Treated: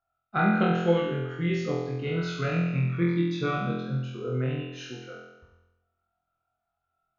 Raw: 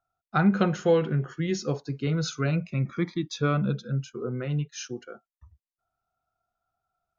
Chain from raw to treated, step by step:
high shelf with overshoot 4,100 Hz −10 dB, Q 1.5
flutter between parallel walls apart 4 metres, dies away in 1 s
level −4.5 dB

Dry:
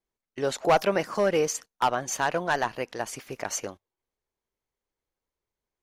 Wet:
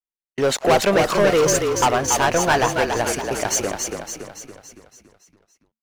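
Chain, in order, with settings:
noise gate −39 dBFS, range −14 dB
leveller curve on the samples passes 3
on a send: echo with shifted repeats 282 ms, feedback 52%, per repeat −32 Hz, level −5 dB

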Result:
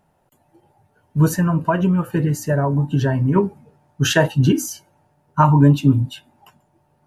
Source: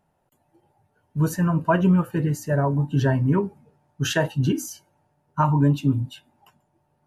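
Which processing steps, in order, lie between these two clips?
0:01.33–0:03.36: downward compressor, threshold −21 dBFS, peak gain reduction 7 dB
level +6.5 dB

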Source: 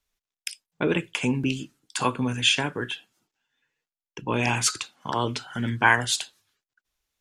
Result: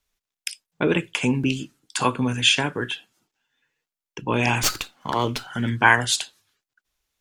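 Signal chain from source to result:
0:04.63–0:05.49: windowed peak hold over 3 samples
level +3 dB

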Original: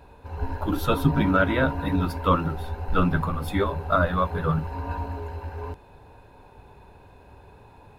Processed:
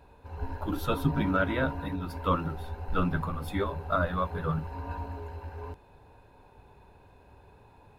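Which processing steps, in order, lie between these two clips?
0:01.72–0:02.13: downward compressor, threshold −24 dBFS, peak gain reduction 6 dB
level −6 dB

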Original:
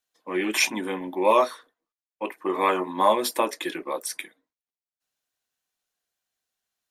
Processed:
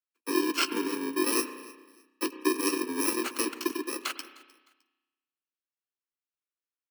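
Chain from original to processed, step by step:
samples in bit-reversed order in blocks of 64 samples
Butterworth high-pass 250 Hz 72 dB per octave
noise gate −58 dBFS, range −16 dB
low-pass filter 1,700 Hz 6 dB per octave
parametric band 660 Hz −8.5 dB 0.62 octaves
in parallel at +3 dB: brickwall limiter −33.5 dBFS, peak gain reduction 16 dB
on the sum: transient designer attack +5 dB, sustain −11 dB
repeating echo 306 ms, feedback 28%, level −22 dB
on a send at −12 dB: convolution reverb RT60 1.2 s, pre-delay 77 ms

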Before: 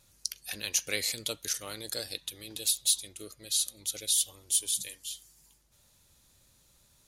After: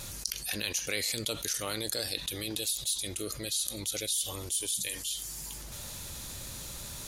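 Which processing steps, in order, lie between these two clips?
envelope flattener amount 70%
level −7 dB

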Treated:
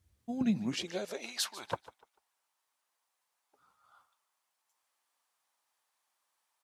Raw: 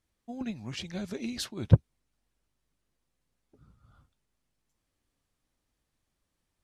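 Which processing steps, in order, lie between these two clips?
parametric band 63 Hz +12 dB 1.6 octaves
on a send: echo with shifted repeats 147 ms, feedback 32%, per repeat −42 Hz, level −17 dB
on the sum: high-pass filter sweep 78 Hz → 900 Hz, 0:00.11–0:01.33
high-shelf EQ 6,600 Hz +6 dB

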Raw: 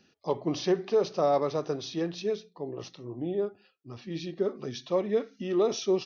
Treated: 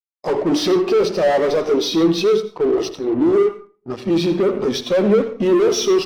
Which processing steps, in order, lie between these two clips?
high-pass filter 60 Hz
parametric band 110 Hz −8.5 dB 1.1 octaves
mains-hum notches 60/120/180/240/300/360 Hz
in parallel at −1 dB: downward compressor, threshold −34 dBFS, peak gain reduction 13 dB
on the sum: fuzz pedal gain 38 dB, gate −47 dBFS
on a send at −8 dB: convolution reverb RT60 0.55 s, pre-delay 83 ms
on the sum: every bin expanded away from the loudest bin 1.5 to 1

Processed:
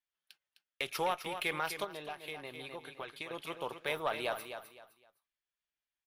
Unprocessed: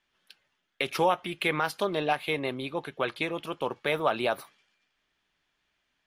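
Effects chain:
one-sided soft clipper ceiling −13 dBFS
high-shelf EQ 7,600 Hz +8 dB
noise gate −55 dBFS, range −15 dB
repeating echo 257 ms, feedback 27%, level −9 dB
0:01.84–0:03.31: downward compressor 5 to 1, threshold −32 dBFS, peak gain reduction 10.5 dB
parametric band 220 Hz −7 dB 1.7 octaves
level −6.5 dB

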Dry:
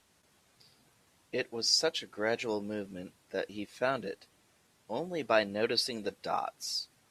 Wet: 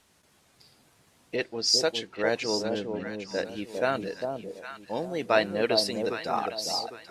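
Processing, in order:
0:01.36–0:03.45: low-pass that shuts in the quiet parts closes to 2,600 Hz, open at −25.5 dBFS
delay that swaps between a low-pass and a high-pass 403 ms, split 910 Hz, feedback 52%, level −4 dB
level +4 dB

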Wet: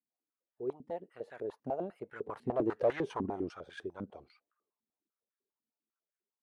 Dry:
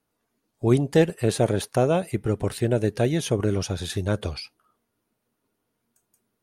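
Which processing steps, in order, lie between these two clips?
source passing by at 0:02.85, 20 m/s, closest 5 metres
gain into a clipping stage and back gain 24.5 dB
band-pass on a step sequencer 10 Hz 240–1,700 Hz
level +7 dB

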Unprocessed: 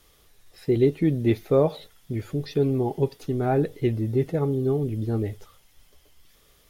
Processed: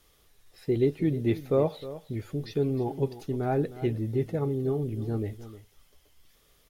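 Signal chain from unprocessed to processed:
single-tap delay 310 ms −15 dB
level −4.5 dB

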